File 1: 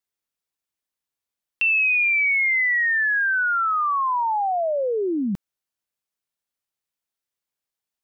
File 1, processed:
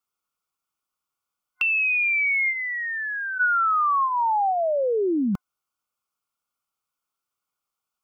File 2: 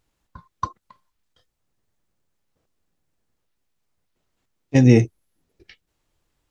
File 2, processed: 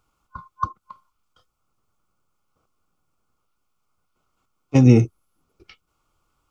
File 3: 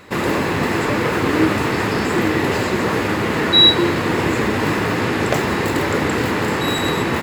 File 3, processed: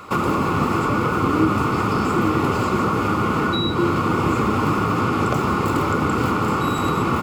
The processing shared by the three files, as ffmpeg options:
-filter_complex "[0:a]superequalizer=9b=1.58:10b=3.55:11b=0.355,acrossover=split=330[a][b];[b]acompressor=threshold=-21dB:ratio=10[c];[a][c]amix=inputs=2:normalize=0,equalizer=f=3.9k:w=7.5:g=-5,volume=1dB"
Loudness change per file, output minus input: -2.0, +0.5, -3.0 LU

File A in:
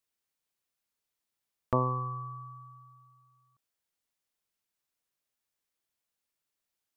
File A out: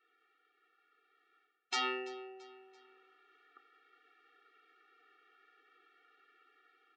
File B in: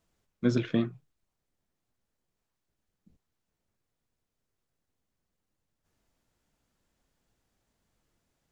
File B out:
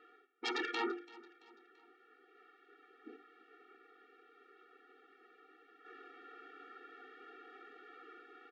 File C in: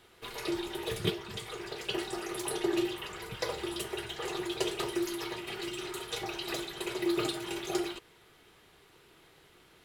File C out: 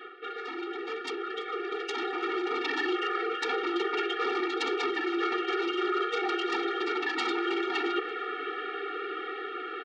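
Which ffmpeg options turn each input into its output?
-af "asuperstop=centerf=970:order=20:qfactor=3,highpass=f=230:w=0.5412,highpass=f=230:w=1.3066,equalizer=f=250:t=q:w=4:g=-7,equalizer=f=390:t=q:w=4:g=5,equalizer=f=610:t=q:w=4:g=8,equalizer=f=880:t=q:w=4:g=-9,equalizer=f=1.4k:t=q:w=4:g=7,equalizer=f=2.2k:t=q:w=4:g=-4,lowpass=f=2.3k:w=0.5412,lowpass=f=2.3k:w=1.3066,aeval=exprs='0.2*sin(PI/2*7.94*val(0)/0.2)':c=same,tiltshelf=f=830:g=-6,areverse,acompressor=threshold=-34dB:ratio=5,areverse,aecho=1:1:336|672|1008:0.0891|0.0365|0.015,dynaudnorm=f=560:g=7:m=7dB,bandreject=f=50:t=h:w=6,bandreject=f=100:t=h:w=6,bandreject=f=150:t=h:w=6,bandreject=f=200:t=h:w=6,bandreject=f=250:t=h:w=6,bandreject=f=300:t=h:w=6,bandreject=f=350:t=h:w=6,afftfilt=real='re*eq(mod(floor(b*sr/1024/240),2),1)':imag='im*eq(mod(floor(b*sr/1024/240),2),1)':win_size=1024:overlap=0.75"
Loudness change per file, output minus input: -5.0, -15.0, +4.5 LU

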